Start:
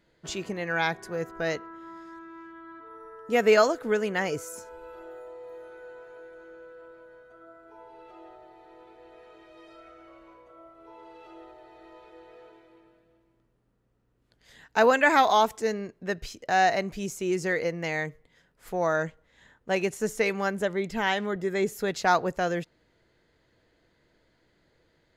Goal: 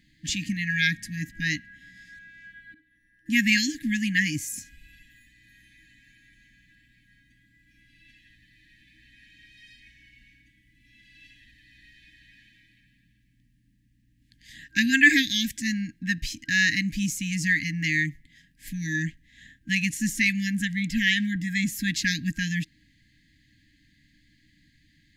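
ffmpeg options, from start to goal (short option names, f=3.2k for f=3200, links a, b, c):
-filter_complex "[0:a]asettb=1/sr,asplit=3[a][b][c];[a]atrim=end=2.744[d];[b]atrim=start=2.74:end=3.26,asetpts=PTS-STARTPTS,afade=t=in:d=0.004:c=qsin,afade=t=out:st=0.516:d=0.004:c=qsin,agate=range=-33dB:threshold=-37dB:ratio=3:detection=peak[e];[c]atrim=start=3.256[f];[d][e]acrossfade=d=0.004:c1=hsin:c2=qsin[g];[g][f]acrossfade=d=0.004:c1=qsin:c2=hsin,afftfilt=real='re*(1-between(b*sr/4096,320,1600))':imag='im*(1-between(b*sr/4096,320,1600))':win_size=4096:overlap=0.75,volume=7.5dB"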